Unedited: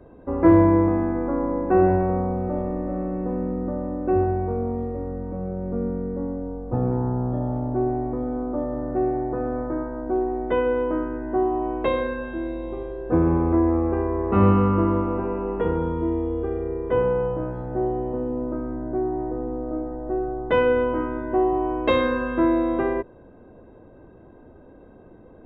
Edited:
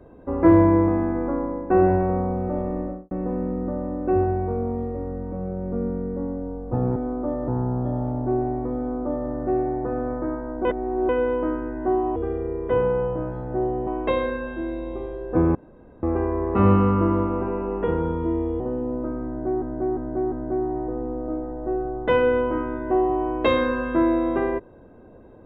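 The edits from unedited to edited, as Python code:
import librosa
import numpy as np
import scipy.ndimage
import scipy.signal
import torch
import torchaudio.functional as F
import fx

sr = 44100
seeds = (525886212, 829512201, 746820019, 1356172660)

y = fx.studio_fade_out(x, sr, start_s=2.79, length_s=0.32)
y = fx.edit(y, sr, fx.fade_out_to(start_s=1.28, length_s=0.42, floor_db=-7.5),
    fx.duplicate(start_s=8.26, length_s=0.52, to_s=6.96),
    fx.reverse_span(start_s=10.13, length_s=0.44),
    fx.room_tone_fill(start_s=13.32, length_s=0.48),
    fx.move(start_s=16.37, length_s=1.71, to_s=11.64),
    fx.repeat(start_s=18.75, length_s=0.35, count=4), tone=tone)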